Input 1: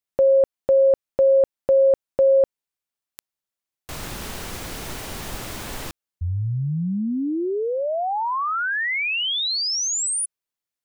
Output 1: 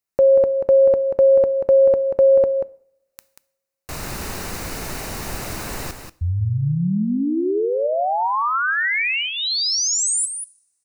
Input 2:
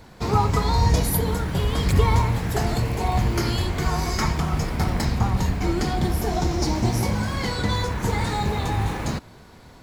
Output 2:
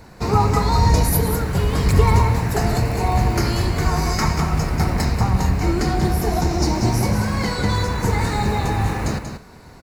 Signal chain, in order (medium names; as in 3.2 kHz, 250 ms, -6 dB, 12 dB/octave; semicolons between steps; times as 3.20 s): peaking EQ 3.3 kHz -11.5 dB 0.21 oct; on a send: delay 186 ms -8 dB; on the sum: two-slope reverb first 0.54 s, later 1.8 s, from -25 dB, DRR 17 dB; trim +3 dB